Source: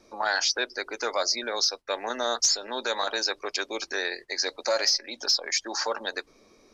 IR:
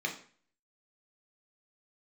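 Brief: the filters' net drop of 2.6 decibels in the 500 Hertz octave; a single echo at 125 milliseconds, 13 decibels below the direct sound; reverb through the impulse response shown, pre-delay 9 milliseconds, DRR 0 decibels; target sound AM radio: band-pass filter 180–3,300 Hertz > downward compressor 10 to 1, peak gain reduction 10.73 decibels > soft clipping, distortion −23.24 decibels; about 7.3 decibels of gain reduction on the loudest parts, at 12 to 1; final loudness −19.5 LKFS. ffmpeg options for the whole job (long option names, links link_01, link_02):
-filter_complex "[0:a]equalizer=frequency=500:width_type=o:gain=-3,acompressor=threshold=-26dB:ratio=12,aecho=1:1:125:0.224,asplit=2[link_01][link_02];[1:a]atrim=start_sample=2205,adelay=9[link_03];[link_02][link_03]afir=irnorm=-1:irlink=0,volume=-5.5dB[link_04];[link_01][link_04]amix=inputs=2:normalize=0,highpass=180,lowpass=3300,acompressor=threshold=-33dB:ratio=10,asoftclip=threshold=-25dB,volume=18dB"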